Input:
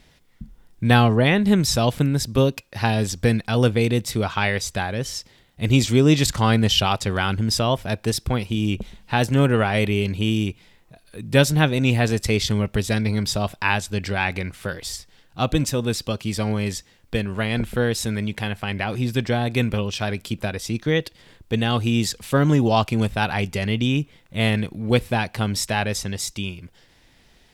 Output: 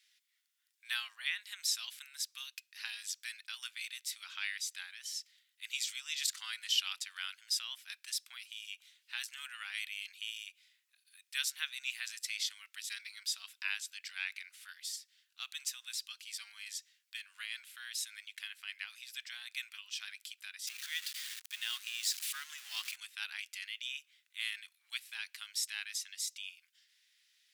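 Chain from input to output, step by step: 20.67–22.96 zero-crossing step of -24.5 dBFS; Bessel high-pass 2600 Hz, order 6; gain -9 dB

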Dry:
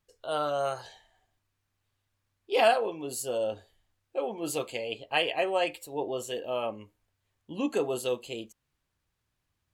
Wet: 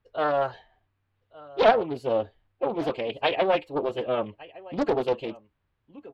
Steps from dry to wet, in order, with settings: time stretch by phase-locked vocoder 0.63×; air absorption 350 m; echo 1.164 s -21 dB; Doppler distortion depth 0.79 ms; gain +7 dB

